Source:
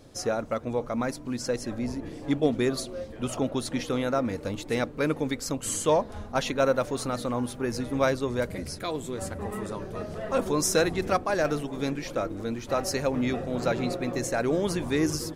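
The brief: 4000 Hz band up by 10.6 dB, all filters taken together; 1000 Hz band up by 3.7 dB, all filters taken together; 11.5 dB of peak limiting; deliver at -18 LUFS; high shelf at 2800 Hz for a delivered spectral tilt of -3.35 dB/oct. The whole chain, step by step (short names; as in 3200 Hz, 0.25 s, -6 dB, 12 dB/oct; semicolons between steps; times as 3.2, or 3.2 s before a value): bell 1000 Hz +3.5 dB; high shelf 2800 Hz +7.5 dB; bell 4000 Hz +6.5 dB; gain +11 dB; limiter -7.5 dBFS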